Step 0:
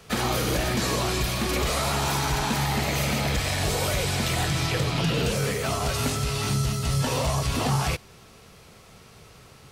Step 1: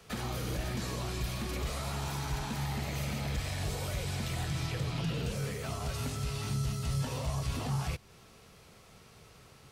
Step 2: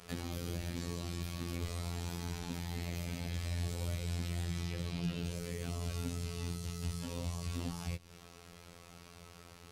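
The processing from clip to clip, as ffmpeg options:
ffmpeg -i in.wav -filter_complex "[0:a]acrossover=split=190[link_01][link_02];[link_02]acompressor=threshold=-36dB:ratio=2[link_03];[link_01][link_03]amix=inputs=2:normalize=0,volume=-6.5dB" out.wav
ffmpeg -i in.wav -filter_complex "[0:a]acrossover=split=470|1900[link_01][link_02][link_03];[link_01]acompressor=threshold=-36dB:ratio=4[link_04];[link_02]acompressor=threshold=-58dB:ratio=4[link_05];[link_03]acompressor=threshold=-50dB:ratio=4[link_06];[link_04][link_05][link_06]amix=inputs=3:normalize=0,afftfilt=real='hypot(re,im)*cos(PI*b)':imag='0':win_size=2048:overlap=0.75,volume=5dB" out.wav

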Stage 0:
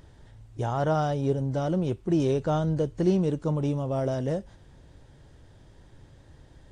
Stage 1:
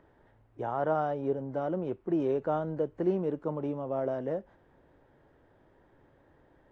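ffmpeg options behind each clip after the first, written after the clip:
ffmpeg -i in.wav -filter_complex "[0:a]acrossover=split=240 2200:gain=0.178 1 0.0631[link_01][link_02][link_03];[link_01][link_02][link_03]amix=inputs=3:normalize=0,volume=-2dB" out.wav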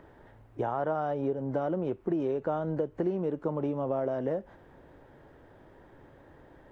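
ffmpeg -i in.wav -af "acompressor=threshold=-35dB:ratio=6,volume=8dB" out.wav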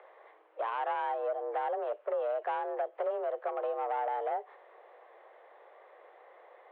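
ffmpeg -i in.wav -af "aresample=11025,asoftclip=type=tanh:threshold=-26dB,aresample=44100,highpass=frequency=200:width_type=q:width=0.5412,highpass=frequency=200:width_type=q:width=1.307,lowpass=frequency=3400:width_type=q:width=0.5176,lowpass=frequency=3400:width_type=q:width=0.7071,lowpass=frequency=3400:width_type=q:width=1.932,afreqshift=210" out.wav

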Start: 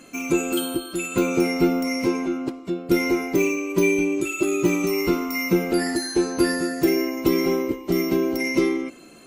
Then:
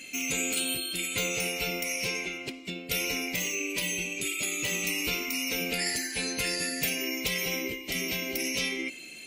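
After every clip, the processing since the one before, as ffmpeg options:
ffmpeg -i in.wav -af "highshelf=frequency=1700:width_type=q:width=3:gain=11.5,afftfilt=real='re*lt(hypot(re,im),0.447)':imag='im*lt(hypot(re,im),0.447)':win_size=1024:overlap=0.75,volume=-7dB" out.wav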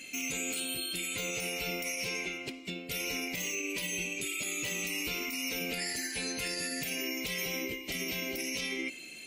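ffmpeg -i in.wav -af "alimiter=limit=-23.5dB:level=0:latency=1:release=43,volume=-2dB" out.wav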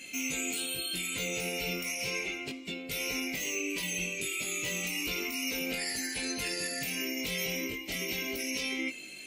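ffmpeg -i in.wav -af "flanger=delay=19:depth=3.6:speed=0.34,volume=4dB" out.wav

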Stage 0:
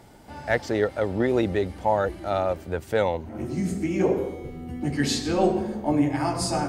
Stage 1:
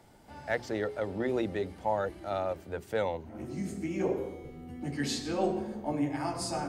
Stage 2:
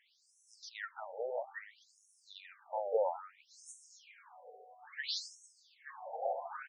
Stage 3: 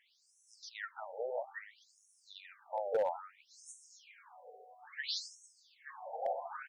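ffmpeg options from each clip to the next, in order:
ffmpeg -i in.wav -filter_complex "[0:a]bandreject=frequency=60:width_type=h:width=6,bandreject=frequency=120:width_type=h:width=6,bandreject=frequency=180:width_type=h:width=6,bandreject=frequency=240:width_type=h:width=6,bandreject=frequency=300:width_type=h:width=6,bandreject=frequency=360:width_type=h:width=6,bandreject=frequency=420:width_type=h:width=6,acrossover=split=110|2700[link_01][link_02][link_03];[link_01]alimiter=level_in=14.5dB:limit=-24dB:level=0:latency=1:release=363,volume=-14.5dB[link_04];[link_04][link_02][link_03]amix=inputs=3:normalize=0,volume=-7.5dB" out.wav
ffmpeg -i in.wav -filter_complex "[0:a]asplit=2[link_01][link_02];[link_02]adelay=874.6,volume=-7dB,highshelf=frequency=4000:gain=-19.7[link_03];[link_01][link_03]amix=inputs=2:normalize=0,acrusher=bits=10:mix=0:aa=0.000001,afftfilt=real='re*between(b*sr/1024,590*pow(7800/590,0.5+0.5*sin(2*PI*0.6*pts/sr))/1.41,590*pow(7800/590,0.5+0.5*sin(2*PI*0.6*pts/sr))*1.41)':imag='im*between(b*sr/1024,590*pow(7800/590,0.5+0.5*sin(2*PI*0.6*pts/sr))/1.41,590*pow(7800/590,0.5+0.5*sin(2*PI*0.6*pts/sr))*1.41)':win_size=1024:overlap=0.75" out.wav
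ffmpeg -i in.wav -af "asoftclip=type=hard:threshold=-26dB" out.wav

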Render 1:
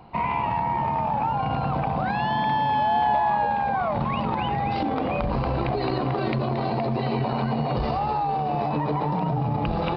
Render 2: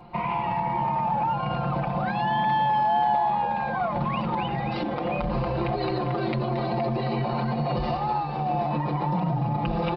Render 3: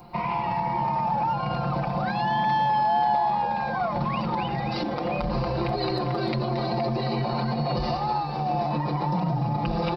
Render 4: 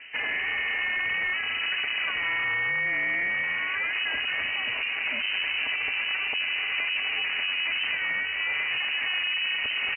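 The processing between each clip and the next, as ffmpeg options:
ffmpeg -i in.wav -filter_complex "[0:a]aecho=1:1:5.7:0.8,asplit=2[link_01][link_02];[link_02]alimiter=limit=-18.5dB:level=0:latency=1:release=279,volume=2.5dB[link_03];[link_01][link_03]amix=inputs=2:normalize=0,volume=-8.5dB" out.wav
ffmpeg -i in.wav -af "aexciter=amount=2.9:drive=8.2:freq=4400" out.wav
ffmpeg -i in.wav -af "aresample=8000,asoftclip=type=tanh:threshold=-27.5dB,aresample=44100,lowpass=frequency=2500:width_type=q:width=0.5098,lowpass=frequency=2500:width_type=q:width=0.6013,lowpass=frequency=2500:width_type=q:width=0.9,lowpass=frequency=2500:width_type=q:width=2.563,afreqshift=-2900,aeval=exprs='val(0)*sin(2*PI*180*n/s)':channel_layout=same,volume=5.5dB" out.wav

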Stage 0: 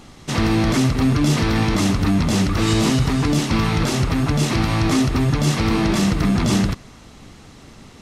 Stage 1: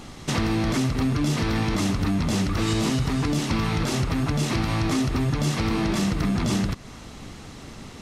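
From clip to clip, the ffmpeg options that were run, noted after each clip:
ffmpeg -i in.wav -af "acompressor=threshold=-27dB:ratio=2.5,volume=2.5dB" out.wav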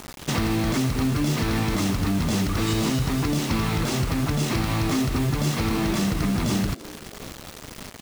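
ffmpeg -i in.wav -filter_complex "[0:a]acrusher=bits=5:mix=0:aa=0.000001,asplit=5[link_01][link_02][link_03][link_04][link_05];[link_02]adelay=301,afreqshift=110,volume=-21dB[link_06];[link_03]adelay=602,afreqshift=220,volume=-26.7dB[link_07];[link_04]adelay=903,afreqshift=330,volume=-32.4dB[link_08];[link_05]adelay=1204,afreqshift=440,volume=-38dB[link_09];[link_01][link_06][link_07][link_08][link_09]amix=inputs=5:normalize=0" out.wav

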